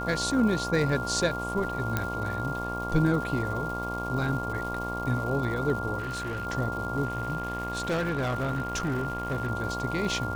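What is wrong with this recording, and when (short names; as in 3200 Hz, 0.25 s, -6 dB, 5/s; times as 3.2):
buzz 60 Hz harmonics 19 -35 dBFS
crackle 430/s -37 dBFS
tone 1400 Hz -33 dBFS
1.97 pop -12 dBFS
5.98–6.47 clipped -29 dBFS
7.04–9.5 clipped -24.5 dBFS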